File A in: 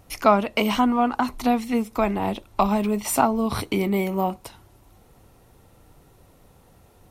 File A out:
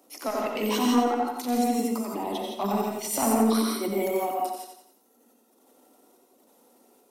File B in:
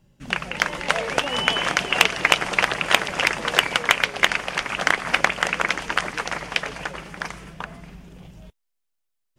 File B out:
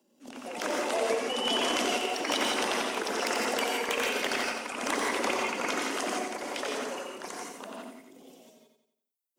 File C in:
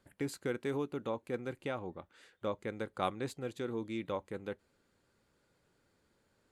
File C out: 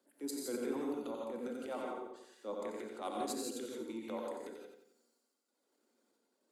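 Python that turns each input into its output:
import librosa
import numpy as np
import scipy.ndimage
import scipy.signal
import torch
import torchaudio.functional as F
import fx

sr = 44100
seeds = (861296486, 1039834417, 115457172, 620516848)

y = scipy.signal.sosfilt(scipy.signal.butter(12, 220.0, 'highpass', fs=sr, output='sos'), x)
y = fx.dereverb_blind(y, sr, rt60_s=1.6)
y = fx.peak_eq(y, sr, hz=1900.0, db=-10.5, octaves=2.0)
y = fx.transient(y, sr, attack_db=-9, sustain_db=8)
y = 10.0 ** (-18.0 / 20.0) * np.tanh(y / 10.0 ** (-18.0 / 20.0))
y = fx.step_gate(y, sr, bpm=197, pattern='xxxx..xxxxx', floor_db=-12.0, edge_ms=4.5)
y = fx.echo_feedback(y, sr, ms=89, feedback_pct=44, wet_db=-6.0)
y = fx.rev_gated(y, sr, seeds[0], gate_ms=190, shape='rising', drr_db=-0.5)
y = fx.end_taper(y, sr, db_per_s=170.0)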